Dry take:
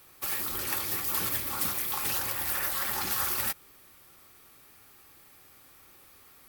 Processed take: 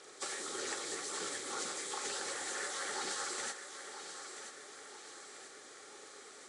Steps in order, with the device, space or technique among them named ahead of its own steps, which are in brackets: hearing aid with frequency lowering (knee-point frequency compression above 3.2 kHz 1.5:1; compression 4:1, threshold -40 dBFS, peak gain reduction 11.5 dB; cabinet simulation 350–6800 Hz, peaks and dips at 430 Hz +10 dB, 1 kHz -8 dB, 2.6 kHz -9 dB); thinning echo 982 ms, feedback 50%, high-pass 220 Hz, level -9.5 dB; trim +6.5 dB

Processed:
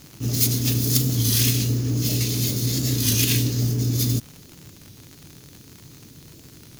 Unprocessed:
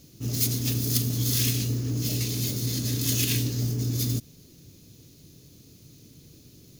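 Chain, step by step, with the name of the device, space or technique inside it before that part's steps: warped LP (warped record 33 1/3 rpm, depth 100 cents; crackle 110 per s -36 dBFS; white noise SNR 35 dB); trim +5 dB

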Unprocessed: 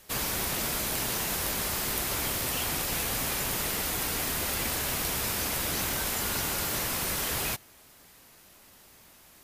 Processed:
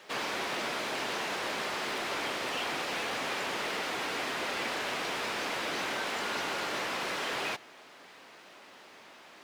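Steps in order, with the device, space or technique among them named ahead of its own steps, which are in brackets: phone line with mismatched companding (band-pass 330–3400 Hz; companding laws mixed up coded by mu)

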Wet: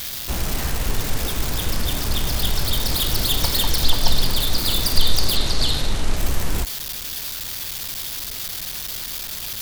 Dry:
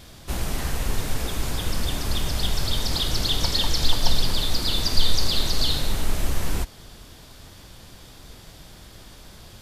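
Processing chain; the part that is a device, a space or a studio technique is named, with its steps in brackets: budget class-D amplifier (dead-time distortion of 0.075 ms; zero-crossing glitches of -17.5 dBFS); 5.36–6.17 s: Bessel low-pass 8.4 kHz, order 8; trim +2.5 dB

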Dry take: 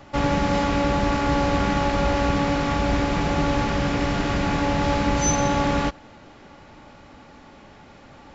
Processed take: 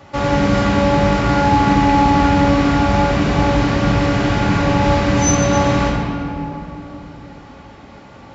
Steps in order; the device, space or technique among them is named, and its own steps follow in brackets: high-pass 52 Hz; stairwell (reverberation RT60 3.0 s, pre-delay 3 ms, DRR -2 dB); trim +2 dB

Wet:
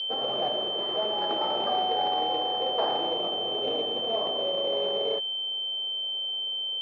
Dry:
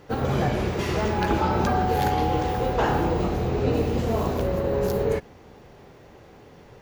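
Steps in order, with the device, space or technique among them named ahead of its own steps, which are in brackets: toy sound module (decimation joined by straight lines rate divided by 8×; class-D stage that switches slowly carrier 3.1 kHz; cabinet simulation 620–5000 Hz, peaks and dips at 630 Hz +5 dB, 950 Hz -5 dB, 1.5 kHz -7 dB, 2.2 kHz -5 dB, 3.2 kHz +4 dB, 4.6 kHz +9 dB)

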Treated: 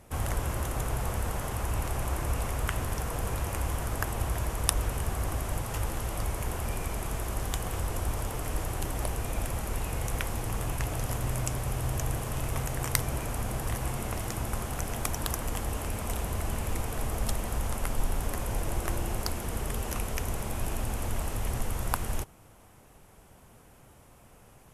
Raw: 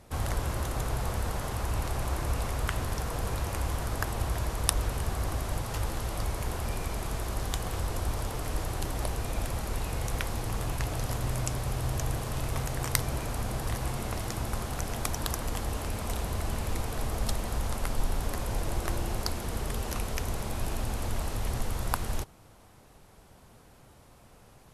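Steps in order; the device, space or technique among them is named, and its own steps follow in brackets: exciter from parts (in parallel at -5.5 dB: high-pass 3.2 kHz 24 dB/octave + saturation -24 dBFS, distortion -7 dB + high-pass 2.4 kHz 12 dB/octave)

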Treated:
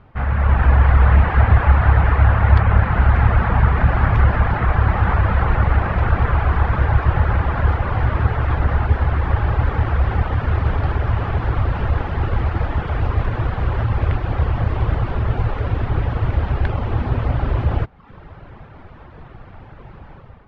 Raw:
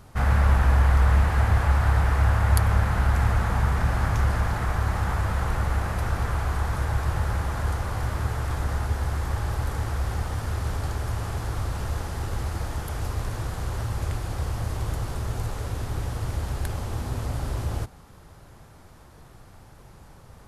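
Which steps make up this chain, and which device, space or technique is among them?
1.41–3.10 s: low-pass 7.8 kHz; reverb removal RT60 0.65 s; action camera in a waterproof case (low-pass 2.9 kHz 24 dB/octave; level rider gain up to 10.5 dB; trim +1 dB; AAC 96 kbps 44.1 kHz)

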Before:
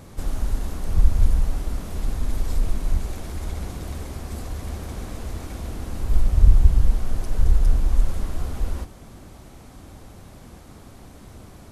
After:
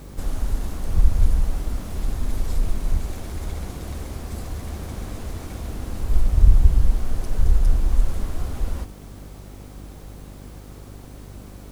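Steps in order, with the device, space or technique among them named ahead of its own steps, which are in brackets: video cassette with head-switching buzz (mains buzz 50 Hz, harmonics 11, -41 dBFS -6 dB/octave; white noise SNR 38 dB)

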